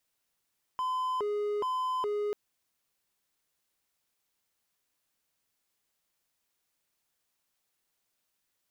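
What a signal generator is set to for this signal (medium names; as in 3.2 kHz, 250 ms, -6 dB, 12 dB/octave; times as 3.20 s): siren hi-lo 415–1020 Hz 1.2 per s triangle -26.5 dBFS 1.54 s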